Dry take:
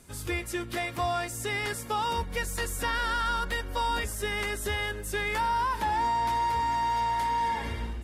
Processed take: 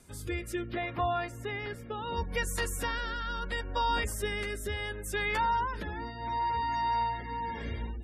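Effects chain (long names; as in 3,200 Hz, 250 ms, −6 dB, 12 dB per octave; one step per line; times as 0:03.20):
0:00.68–0:02.17: parametric band 8,900 Hz −14.5 dB 1.6 octaves
gate on every frequency bin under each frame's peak −30 dB strong
rotating-speaker cabinet horn 0.7 Hz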